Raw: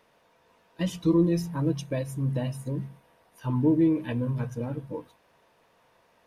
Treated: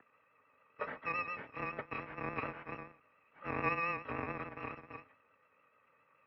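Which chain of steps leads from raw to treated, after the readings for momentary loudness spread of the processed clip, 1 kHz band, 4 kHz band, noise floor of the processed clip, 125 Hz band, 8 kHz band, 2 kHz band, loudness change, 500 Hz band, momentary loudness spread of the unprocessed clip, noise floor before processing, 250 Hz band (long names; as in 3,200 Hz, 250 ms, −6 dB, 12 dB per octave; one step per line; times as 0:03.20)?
13 LU, +3.5 dB, −15.0 dB, −72 dBFS, −22.0 dB, below −30 dB, +6.0 dB, −12.0 dB, −13.0 dB, 13 LU, −65 dBFS, −22.0 dB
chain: samples in bit-reversed order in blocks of 256 samples
single-sideband voice off tune −160 Hz 320–2,200 Hz
pitch vibrato 7 Hz 43 cents
level +8.5 dB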